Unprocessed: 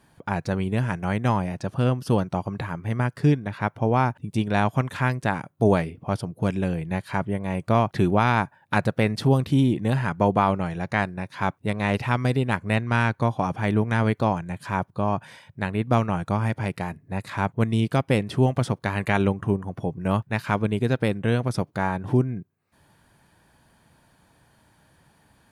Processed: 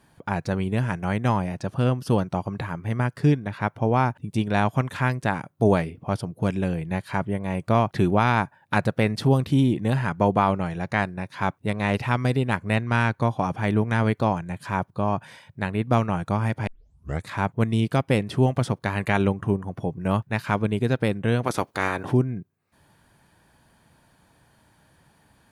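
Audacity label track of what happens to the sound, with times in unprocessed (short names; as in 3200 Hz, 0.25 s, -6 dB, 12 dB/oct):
16.670000	16.670000	tape start 0.60 s
21.430000	22.100000	spectral limiter ceiling under each frame's peak by 19 dB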